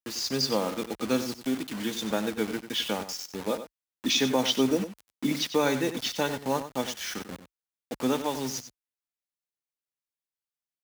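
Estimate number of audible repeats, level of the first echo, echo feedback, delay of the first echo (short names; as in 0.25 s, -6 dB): 1, -11.5 dB, no steady repeat, 95 ms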